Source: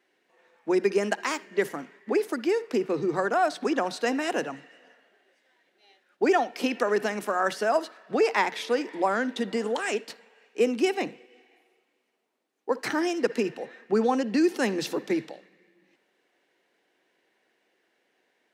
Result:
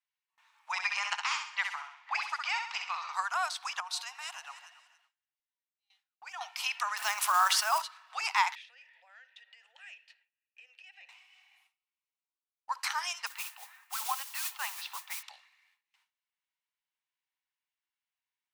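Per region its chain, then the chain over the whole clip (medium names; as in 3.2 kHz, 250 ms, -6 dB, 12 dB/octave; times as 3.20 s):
0.71–3.12 s: spectral peaks clipped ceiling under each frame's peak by 13 dB + distance through air 140 m + feedback delay 65 ms, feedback 42%, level -6 dB
3.80–6.41 s: echo whose repeats swap between lows and highs 141 ms, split 850 Hz, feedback 56%, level -12 dB + compression 5:1, threshold -32 dBFS + three bands expanded up and down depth 40%
6.97–7.82 s: block-companded coder 5-bit + bass shelf 460 Hz +12 dB + level flattener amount 50%
8.55–11.09 s: compression, threshold -28 dBFS + vowel filter e
13.26–15.23 s: distance through air 310 m + modulation noise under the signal 17 dB
whole clip: steep high-pass 920 Hz 48 dB/octave; gate with hold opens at -57 dBFS; peaking EQ 1.7 kHz -9 dB 0.59 oct; trim +2.5 dB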